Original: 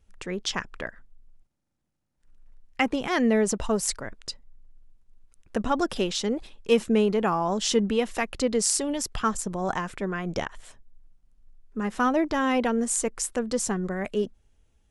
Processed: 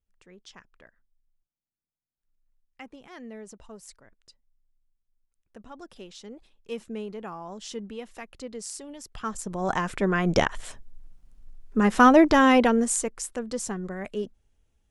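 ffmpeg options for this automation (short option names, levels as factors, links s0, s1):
-af "volume=2.51,afade=t=in:st=5.71:d=1.14:silence=0.473151,afade=t=in:st=9.04:d=0.4:silence=0.334965,afade=t=in:st=9.44:d=0.93:silence=0.251189,afade=t=out:st=12.31:d=0.82:silence=0.237137"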